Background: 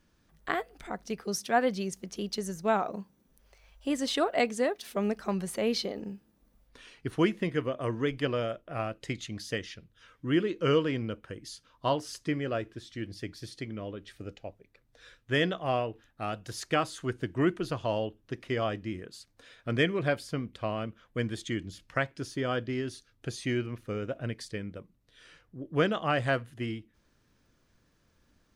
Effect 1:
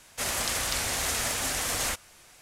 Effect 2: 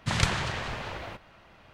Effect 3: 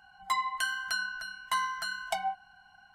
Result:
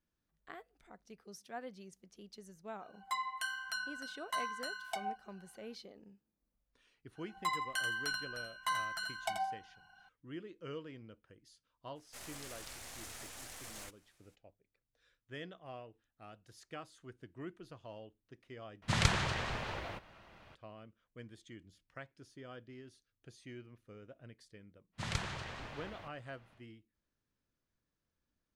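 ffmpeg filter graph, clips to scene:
-filter_complex "[3:a]asplit=2[a][b];[2:a]asplit=2[c][d];[0:a]volume=-19.5dB[e];[a]lowshelf=f=130:g=-9[f];[b]aecho=1:1:84|168|252:0.473|0.071|0.0106[g];[1:a]aeval=exprs='if(lt(val(0),0),0.447*val(0),val(0))':c=same[h];[e]asplit=2[i][j];[i]atrim=end=18.824[k];[c]atrim=end=1.73,asetpts=PTS-STARTPTS,volume=-4dB[l];[j]atrim=start=20.546[m];[f]atrim=end=2.94,asetpts=PTS-STARTPTS,volume=-7.5dB,afade=t=in:d=0.004:c=hsin,afade=t=out:st=2.936:d=0.004:c=hsin,adelay=2810[n];[g]atrim=end=2.94,asetpts=PTS-STARTPTS,volume=-5.5dB,afade=t=in:d=0.004:c=hsin,afade=t=out:st=2.936:d=0.004:c=hsin,adelay=7150[o];[h]atrim=end=2.41,asetpts=PTS-STARTPTS,volume=-17.5dB,afade=t=in:d=0.02,afade=t=out:st=2.39:d=0.02,adelay=11950[p];[d]atrim=end=1.73,asetpts=PTS-STARTPTS,volume=-12dB,afade=t=in:d=0.1,afade=t=out:st=1.63:d=0.1,adelay=24920[q];[k][l]acrossfade=d=0.004:c1=hsin:c2=hsin[r];[r][m]acrossfade=d=0.004:c1=hsin:c2=hsin[s];[s][n][o][p][q]amix=inputs=5:normalize=0"

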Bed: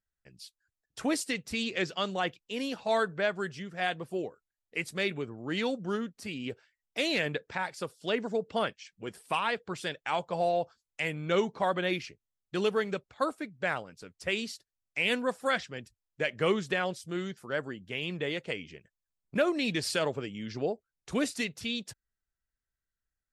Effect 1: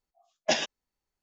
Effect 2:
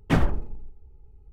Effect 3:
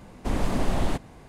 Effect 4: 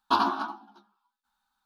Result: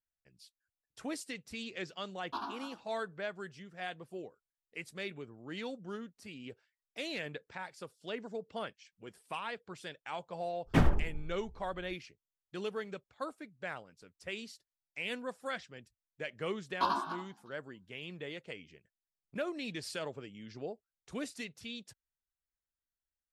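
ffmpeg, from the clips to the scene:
-filter_complex "[4:a]asplit=2[a][b];[0:a]volume=-10dB[c];[b]aecho=1:1:1.9:0.37[d];[a]atrim=end=1.65,asetpts=PTS-STARTPTS,volume=-16dB,afade=t=in:d=0.004:c=hsin,afade=t=out:st=1.646:d=0.004:c=hsin,adelay=2220[e];[2:a]atrim=end=1.32,asetpts=PTS-STARTPTS,volume=-4.5dB,afade=t=in:d=0.05,afade=t=out:st=1.27:d=0.05,adelay=10640[f];[d]atrim=end=1.65,asetpts=PTS-STARTPTS,volume=-8.5dB,afade=t=in:d=0.004:c=hsin,afade=t=out:st=1.646:d=0.004:c=hsin,adelay=16700[g];[c][e][f][g]amix=inputs=4:normalize=0"

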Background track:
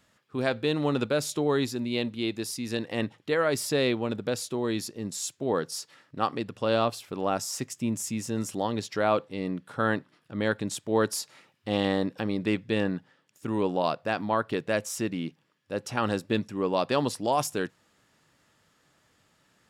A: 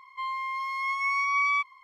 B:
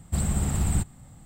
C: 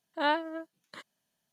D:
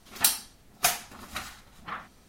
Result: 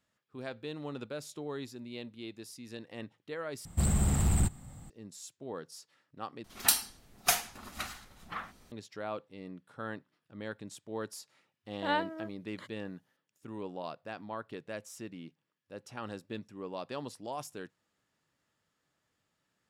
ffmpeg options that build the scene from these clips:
-filter_complex "[0:a]volume=-14dB[a];[2:a]asoftclip=type=tanh:threshold=-18dB[b];[a]asplit=3[c][d][e];[c]atrim=end=3.654[f];[b]atrim=end=1.25,asetpts=PTS-STARTPTS,volume=-0.5dB[g];[d]atrim=start=4.896:end=6.444[h];[4:a]atrim=end=2.28,asetpts=PTS-STARTPTS,volume=-2.5dB[i];[e]atrim=start=8.716[j];[3:a]atrim=end=1.52,asetpts=PTS-STARTPTS,volume=-3.5dB,afade=t=in:d=0.004:c=hsin,afade=t=out:st=1.516:d=0.004:c=hsin,adelay=11650[k];[f][g]acrossfade=d=0.004:c1=hsin:c2=hsin[l];[l][h]acrossfade=d=0.004:c1=hsin:c2=hsin[m];[m][i]acrossfade=d=0.004:c1=hsin:c2=hsin[n];[n][j]acrossfade=d=0.004:c1=hsin:c2=hsin[o];[o][k]amix=inputs=2:normalize=0"

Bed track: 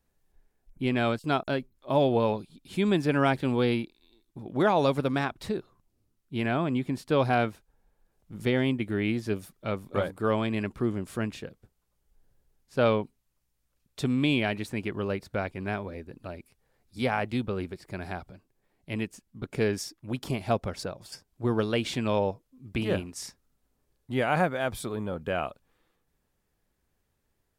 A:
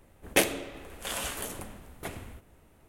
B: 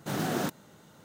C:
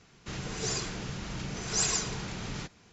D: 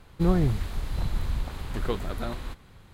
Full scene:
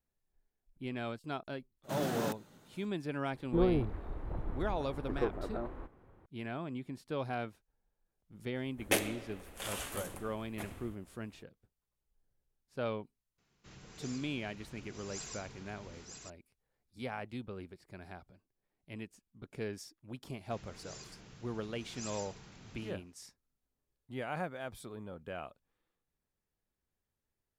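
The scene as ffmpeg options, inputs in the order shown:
-filter_complex "[3:a]asplit=2[a][b];[0:a]volume=-13dB[c];[4:a]firequalizer=gain_entry='entry(190,0);entry(310,10);entry(4100,-21)':delay=0.05:min_phase=1[d];[a]aecho=1:1:942:0.501[e];[2:a]atrim=end=1.04,asetpts=PTS-STARTPTS,volume=-6dB,afade=t=in:d=0.02,afade=t=out:st=1.02:d=0.02,adelay=1830[f];[d]atrim=end=2.93,asetpts=PTS-STARTPTS,volume=-11dB,afade=t=in:d=0.004:c=hsin,afade=t=out:st=2.926:d=0.004:c=hsin,adelay=146853S[g];[1:a]atrim=end=2.88,asetpts=PTS-STARTPTS,volume=-6.5dB,afade=t=in:d=0.004:c=hsin,afade=t=out:st=2.876:d=0.004:c=hsin,adelay=8550[h];[e]atrim=end=2.92,asetpts=PTS-STARTPTS,volume=-17dB,afade=t=in:d=0.004:c=hsin,afade=t=out:st=2.916:d=0.004:c=hsin,adelay=13380[i];[b]atrim=end=2.92,asetpts=PTS-STARTPTS,volume=-17.5dB,afade=t=in:d=0.004:c=hsin,afade=t=out:st=2.916:d=0.004:c=hsin,adelay=20240[j];[c][f][g][h][i][j]amix=inputs=6:normalize=0"

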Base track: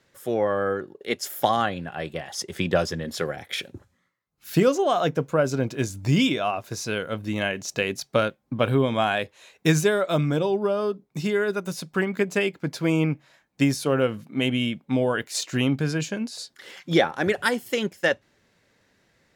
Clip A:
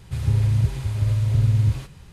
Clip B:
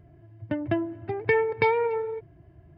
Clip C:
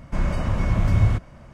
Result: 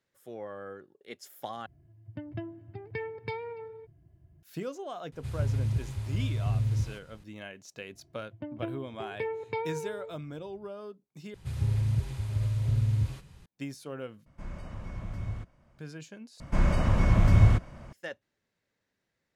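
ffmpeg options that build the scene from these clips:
-filter_complex "[2:a]asplit=2[a][b];[1:a]asplit=2[c][d];[3:a]asplit=2[e][f];[0:a]volume=-17.5dB[g];[a]bass=f=250:g=10,treble=f=4k:g=14[h];[b]equalizer=f=1.7k:t=o:w=0.65:g=-7.5[i];[g]asplit=5[j][k][l][m][n];[j]atrim=end=1.664[o];[h]atrim=end=2.77,asetpts=PTS-STARTPTS,volume=-15.5dB[p];[k]atrim=start=4.426:end=11.344[q];[d]atrim=end=2.12,asetpts=PTS-STARTPTS,volume=-8dB[r];[l]atrim=start=13.456:end=14.264[s];[e]atrim=end=1.53,asetpts=PTS-STARTPTS,volume=-17.5dB[t];[m]atrim=start=15.786:end=16.404[u];[f]atrim=end=1.53,asetpts=PTS-STARTPTS,volume=-1dB[v];[n]atrim=start=17.926[w];[c]atrim=end=2.12,asetpts=PTS-STARTPTS,volume=-9.5dB,afade=t=in:d=0.004:c=hsin,afade=t=out:st=2.116:d=0.004:c=hsin,adelay=5120[x];[i]atrim=end=2.77,asetpts=PTS-STARTPTS,volume=-10.5dB,afade=t=in:d=0.004:c=hsin,afade=t=out:st=2.766:d=0.004:c=hsin,adelay=7910[y];[o][p]acrossfade=d=0.004:c1=hsin:c2=hsin[z];[z][q]acrossfade=d=0.004:c1=hsin:c2=hsin[aa];[aa][r]acrossfade=d=0.004:c1=hsin:c2=hsin[ab];[ab][s]acrossfade=d=0.004:c1=hsin:c2=hsin[ac];[ac][t]acrossfade=d=0.004:c1=hsin:c2=hsin[ad];[ad][u]acrossfade=d=0.004:c1=hsin:c2=hsin[ae];[ae][v]acrossfade=d=0.004:c1=hsin:c2=hsin[af];[af][w]acrossfade=d=0.004:c1=hsin:c2=hsin[ag];[ag][x][y]amix=inputs=3:normalize=0"

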